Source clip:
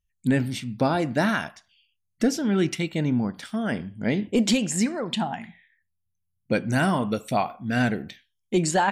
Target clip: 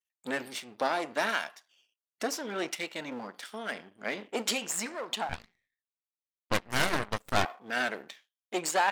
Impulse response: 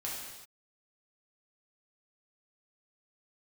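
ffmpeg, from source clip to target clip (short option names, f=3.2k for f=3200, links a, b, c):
-filter_complex "[0:a]aeval=exprs='if(lt(val(0),0),0.251*val(0),val(0))':c=same,highpass=520,asettb=1/sr,asplit=3[a][b][c];[a]atrim=end=5.294[d];[b]atrim=start=5.29:end=7.45,asetpts=PTS-STARTPTS,afade=t=in:d=0.004:c=qsin,afade=t=out:st=2.156:d=0.004:c=qsin,aeval=exprs='0.2*(cos(1*acos(clip(val(0)/0.2,-1,1)))-cos(1*PI/2))+0.0251*(cos(7*acos(clip(val(0)/0.2,-1,1)))-cos(7*PI/2))+0.0447*(cos(8*acos(clip(val(0)/0.2,-1,1)))-cos(8*PI/2))':c=same[e];[c]atrim=start=7.446[f];[d][e]acrossfade=d=0.004:c1=hsin:c2=qsin[g];[g][f]acrossfade=d=0.004:c1=qsin:c2=hsin"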